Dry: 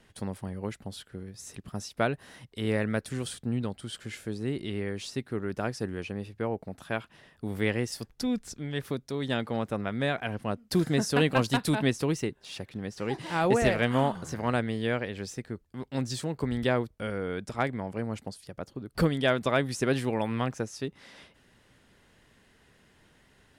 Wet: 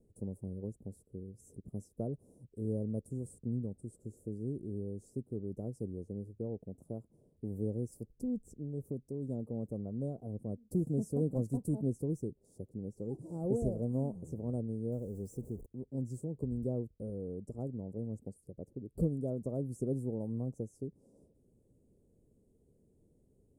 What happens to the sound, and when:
0:14.92–0:15.66: converter with a step at zero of −38 dBFS
whole clip: dynamic equaliser 400 Hz, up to −5 dB, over −38 dBFS, Q 1.4; Chebyshev band-stop filter 470–7,800 Hz, order 3; high shelf with overshoot 1,900 Hz −9.5 dB, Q 3; level −4 dB

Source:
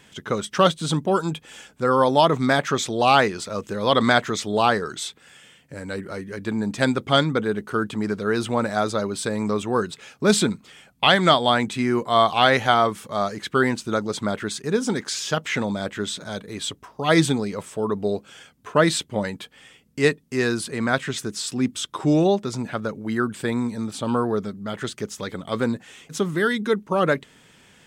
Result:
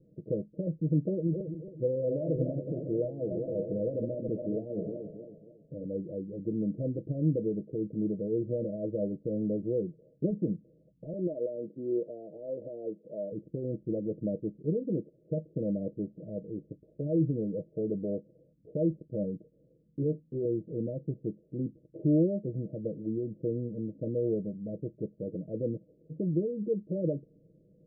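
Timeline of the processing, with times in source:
0:01.13–0:05.88: feedback delay that plays each chunk backwards 137 ms, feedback 59%, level −7 dB
0:11.13–0:13.32: high-pass filter 300 Hz
0:20.00–0:20.45: double-tracking delay 13 ms −4 dB
whole clip: brickwall limiter −15.5 dBFS; Chebyshev low-pass filter 610 Hz, order 8; comb filter 6.2 ms, depth 65%; level −5 dB

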